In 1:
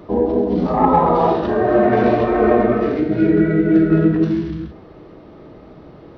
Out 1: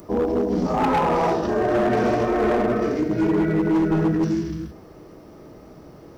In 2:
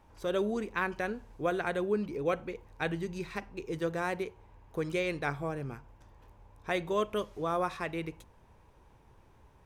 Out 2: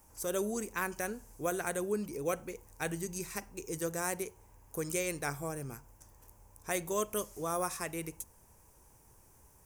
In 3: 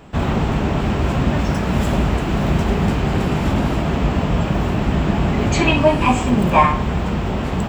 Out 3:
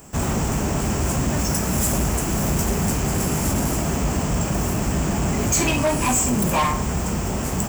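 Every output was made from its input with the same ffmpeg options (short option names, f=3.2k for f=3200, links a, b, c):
-af "aexciter=amount=12.5:drive=4.3:freq=5.6k,asoftclip=type=hard:threshold=-12.5dB,volume=-3.5dB"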